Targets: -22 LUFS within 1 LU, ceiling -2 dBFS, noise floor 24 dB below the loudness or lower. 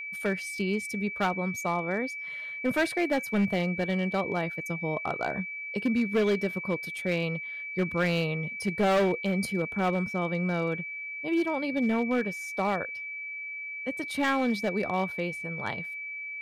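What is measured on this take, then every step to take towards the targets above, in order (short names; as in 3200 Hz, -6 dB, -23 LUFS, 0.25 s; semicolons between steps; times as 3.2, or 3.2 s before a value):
clipped 1.5%; flat tops at -20.0 dBFS; steady tone 2300 Hz; tone level -35 dBFS; loudness -29.5 LUFS; peak -20.0 dBFS; loudness target -22.0 LUFS
-> clip repair -20 dBFS; notch 2300 Hz, Q 30; gain +7.5 dB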